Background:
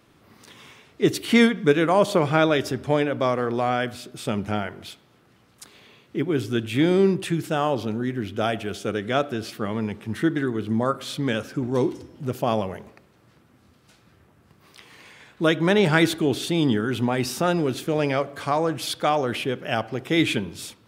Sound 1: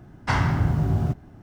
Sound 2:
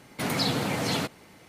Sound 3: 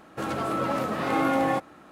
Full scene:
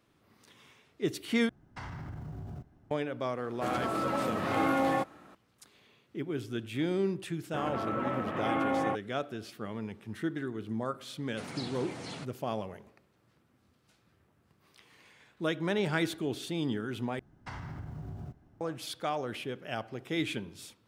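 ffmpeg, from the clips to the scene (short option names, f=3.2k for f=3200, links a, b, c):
-filter_complex "[1:a]asplit=2[a][b];[3:a]asplit=2[c][d];[0:a]volume=-11.5dB[e];[a]acompressor=threshold=-24dB:ratio=6:attack=2.4:release=57:knee=1:detection=peak[f];[d]afwtdn=0.0158[g];[2:a]aresample=22050,aresample=44100[h];[b]acompressor=threshold=-23dB:ratio=6:attack=3.2:release=140:knee=1:detection=peak[i];[e]asplit=3[j][k][l];[j]atrim=end=1.494[m];[f]atrim=end=1.42,asetpts=PTS-STARTPTS,volume=-14.5dB[n];[k]atrim=start=2.906:end=17.194[o];[i]atrim=end=1.42,asetpts=PTS-STARTPTS,volume=-14.5dB[p];[l]atrim=start=18.606[q];[c]atrim=end=1.91,asetpts=PTS-STARTPTS,volume=-4dB,afade=t=in:d=0.004:c=hsin,afade=t=out:st=1.906:d=0.004:c=hsin,adelay=3440[r];[g]atrim=end=1.91,asetpts=PTS-STARTPTS,volume=-6dB,afade=t=in:d=0.004:c=hsin,afade=t=out:st=1.906:d=0.004:c=hsin,adelay=7360[s];[h]atrim=end=1.48,asetpts=PTS-STARTPTS,volume=-14.5dB,afade=t=in:d=0.004:c=hsin,afade=t=out:st=1.476:d=0.004:c=hsin,adelay=11180[t];[m][n]acrossfade=d=0.004:c1=hsin:c2=hsin[u];[u][o]acrossfade=d=0.004:c1=hsin:c2=hsin[v];[v][p]acrossfade=d=0.004:c1=hsin:c2=hsin[w];[w][q]acrossfade=d=0.004:c1=hsin:c2=hsin[x];[x][r][s][t]amix=inputs=4:normalize=0"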